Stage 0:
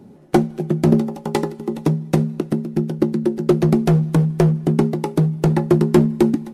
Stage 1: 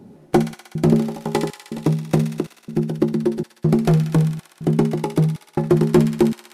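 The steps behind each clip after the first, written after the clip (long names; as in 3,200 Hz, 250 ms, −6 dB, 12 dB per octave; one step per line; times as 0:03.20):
gate pattern "xxxxx..xx" 140 BPM −60 dB
in parallel at −11 dB: soft clipping −15.5 dBFS, distortion −9 dB
on the sum: delay with a high-pass on its return 62 ms, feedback 79%, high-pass 1,900 Hz, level −5.5 dB
level −2 dB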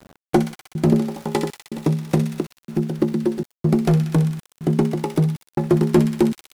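centre clipping without the shift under −38.5 dBFS
level −1 dB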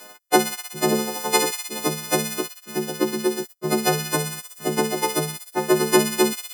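every partial snapped to a pitch grid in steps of 3 semitones
high-pass filter 390 Hz 12 dB per octave
level +3.5 dB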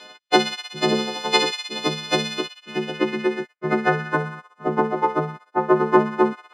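low-pass filter sweep 3,700 Hz → 1,200 Hz, 0:02.32–0:04.52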